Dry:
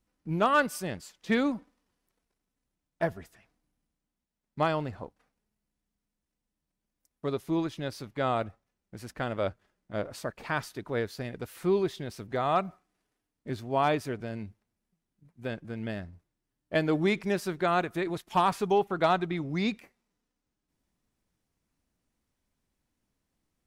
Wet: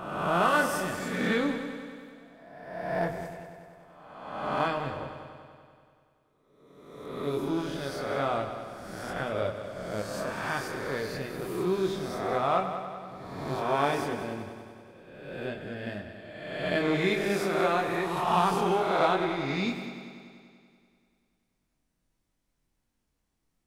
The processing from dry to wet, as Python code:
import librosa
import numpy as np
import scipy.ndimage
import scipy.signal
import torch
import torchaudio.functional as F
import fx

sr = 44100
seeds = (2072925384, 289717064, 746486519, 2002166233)

y = fx.spec_swells(x, sr, rise_s=1.33)
y = fx.chorus_voices(y, sr, voices=6, hz=0.14, base_ms=25, depth_ms=4.0, mix_pct=40)
y = fx.echo_heads(y, sr, ms=96, heads='first and second', feedback_pct=63, wet_db=-13)